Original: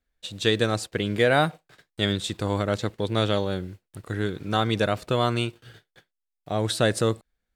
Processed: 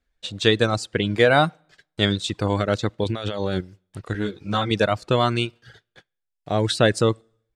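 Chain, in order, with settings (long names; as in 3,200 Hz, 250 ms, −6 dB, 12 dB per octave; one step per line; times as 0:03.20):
low-pass filter 7,300 Hz 12 dB per octave
on a send at −22.5 dB: convolution reverb RT60 0.70 s, pre-delay 7 ms
0:03.04–0:03.61: on the sum: compressor whose output falls as the input rises −29 dBFS, ratio −1
reverb reduction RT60 0.64 s
0:04.13–0:04.71: string-ensemble chorus
level +4.5 dB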